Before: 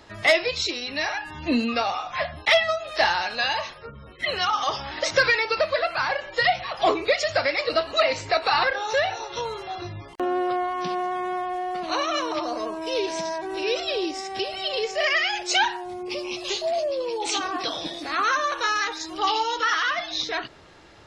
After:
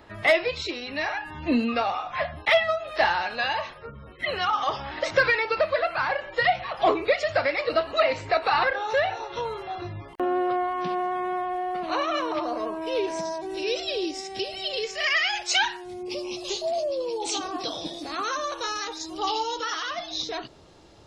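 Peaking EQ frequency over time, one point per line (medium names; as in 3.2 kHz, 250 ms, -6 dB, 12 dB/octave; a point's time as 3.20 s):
peaking EQ -11 dB 1.4 oct
12.98 s 6.1 kHz
13.53 s 1.2 kHz
14.70 s 1.2 kHz
15.35 s 250 Hz
16.18 s 1.8 kHz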